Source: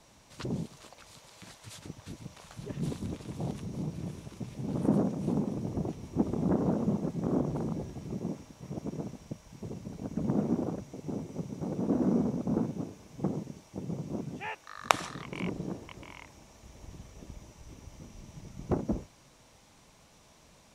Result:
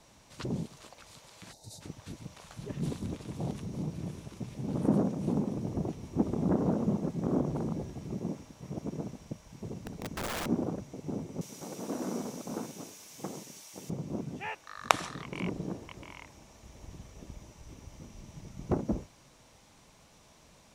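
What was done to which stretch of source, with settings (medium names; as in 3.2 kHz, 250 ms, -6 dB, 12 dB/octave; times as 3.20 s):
1.53–1.81 s: time-frequency box 930–3600 Hz -19 dB
9.77–10.46 s: integer overflow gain 30.5 dB
11.41–13.90 s: tilt EQ +4.5 dB/octave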